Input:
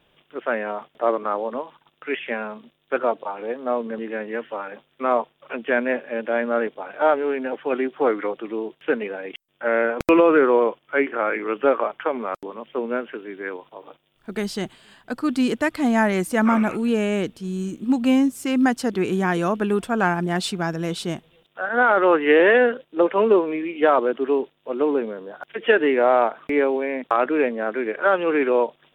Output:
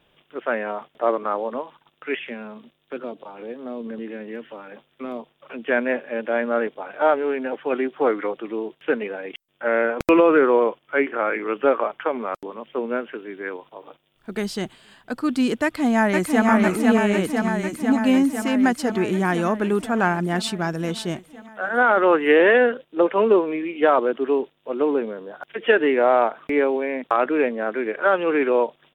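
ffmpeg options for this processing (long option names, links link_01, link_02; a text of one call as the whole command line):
ffmpeg -i in.wav -filter_complex "[0:a]asettb=1/sr,asplit=3[link_01][link_02][link_03];[link_01]atrim=end=2.254[link_04];[link_02]atrim=start=2.25:end=5.68,asetpts=PTS-STARTPTS,afade=type=in:duration=0.004:curve=qsin,afade=type=out:start_time=3.426:duration=0.004:curve=qsin,acrossover=split=370|3000[link_05][link_06][link_07];[link_06]acompressor=threshold=-38dB:ratio=6:attack=3.2:release=140:knee=2.83:detection=peak[link_08];[link_05][link_08][link_07]amix=inputs=3:normalize=0[link_09];[link_03]atrim=start=5.676[link_10];[link_04][link_09]acrossfade=duration=0.004:curve1=hsin:curve2=qsin[link_11];[link_11][link_10]acrossfade=duration=0.004:curve1=qsin:curve2=hsin,asplit=2[link_12][link_13];[link_13]afade=type=in:start_time=15.63:duration=0.01,afade=type=out:start_time=16.48:duration=0.01,aecho=0:1:500|1000|1500|2000|2500|3000|3500|4000|4500|5000|5500|6000:0.794328|0.595746|0.44681|0.335107|0.25133|0.188498|0.141373|0.10603|0.0795225|0.0596419|0.0447314|0.0335486[link_14];[link_12][link_14]amix=inputs=2:normalize=0" out.wav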